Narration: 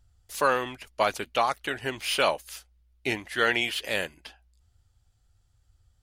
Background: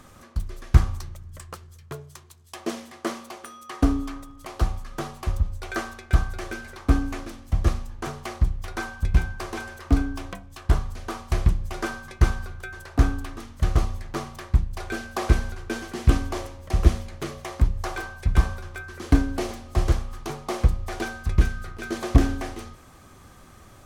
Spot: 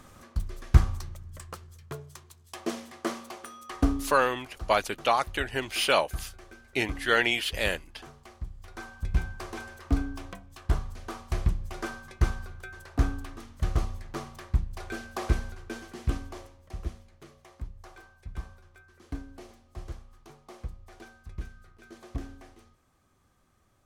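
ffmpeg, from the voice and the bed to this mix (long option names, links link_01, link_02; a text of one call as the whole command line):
ffmpeg -i stem1.wav -i stem2.wav -filter_complex "[0:a]adelay=3700,volume=0.5dB[link_01];[1:a]volume=8dB,afade=type=out:start_time=3.67:duration=0.83:silence=0.199526,afade=type=in:start_time=8.5:duration=0.77:silence=0.298538,afade=type=out:start_time=15.17:duration=1.77:silence=0.223872[link_02];[link_01][link_02]amix=inputs=2:normalize=0" out.wav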